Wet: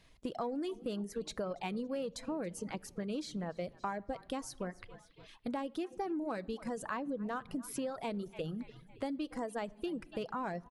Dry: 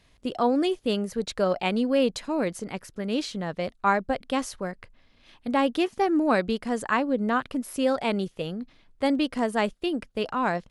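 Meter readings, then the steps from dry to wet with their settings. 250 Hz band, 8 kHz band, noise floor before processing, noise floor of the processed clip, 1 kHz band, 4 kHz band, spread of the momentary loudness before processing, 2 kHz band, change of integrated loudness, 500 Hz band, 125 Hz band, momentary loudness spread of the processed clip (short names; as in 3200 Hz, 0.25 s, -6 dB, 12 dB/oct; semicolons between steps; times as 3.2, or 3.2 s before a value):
-12.5 dB, -7.5 dB, -61 dBFS, -61 dBFS, -13.5 dB, -14.5 dB, 10 LU, -15.5 dB, -13.0 dB, -13.0 dB, -9.0 dB, 5 LU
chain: on a send: frequency-shifting echo 0.281 s, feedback 48%, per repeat -34 Hz, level -19.5 dB; on the sum: shoebox room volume 1900 m³, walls furnished, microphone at 0.64 m; in parallel at -11 dB: hard clip -26 dBFS, distortion -7 dB; on the sum: dynamic EQ 2600 Hz, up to -5 dB, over -41 dBFS, Q 0.73; reverb removal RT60 0.8 s; compressor, threshold -30 dBFS, peak gain reduction 12.5 dB; gain -5 dB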